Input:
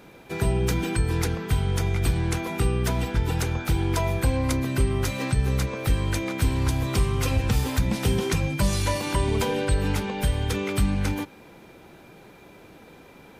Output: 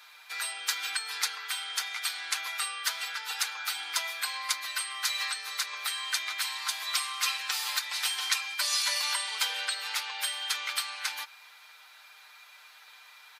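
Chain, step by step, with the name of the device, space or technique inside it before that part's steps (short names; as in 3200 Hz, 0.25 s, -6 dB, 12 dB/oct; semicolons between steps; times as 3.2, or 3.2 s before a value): headphones lying on a table (HPF 1100 Hz 24 dB/oct; bell 4300 Hz +7 dB 0.59 oct); comb 6.6 ms, depth 65%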